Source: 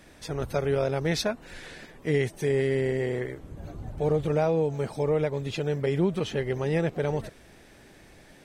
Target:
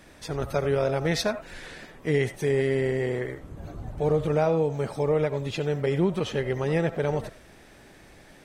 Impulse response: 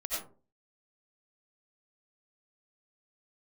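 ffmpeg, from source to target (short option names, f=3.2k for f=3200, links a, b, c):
-filter_complex "[0:a]asplit=2[a][b];[b]equalizer=f=1.1k:t=o:w=2:g=12.5[c];[1:a]atrim=start_sample=2205,afade=t=out:st=0.14:d=0.01,atrim=end_sample=6615[d];[c][d]afir=irnorm=-1:irlink=0,volume=-17dB[e];[a][e]amix=inputs=2:normalize=0"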